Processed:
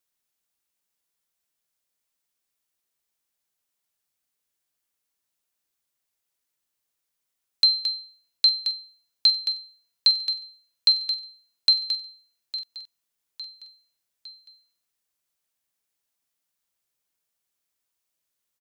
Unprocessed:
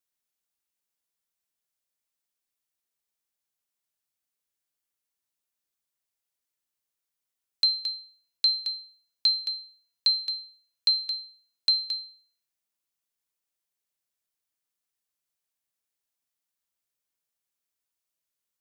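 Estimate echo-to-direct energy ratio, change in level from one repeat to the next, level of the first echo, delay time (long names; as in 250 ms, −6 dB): −12.5 dB, −6.0 dB, −14.0 dB, 857 ms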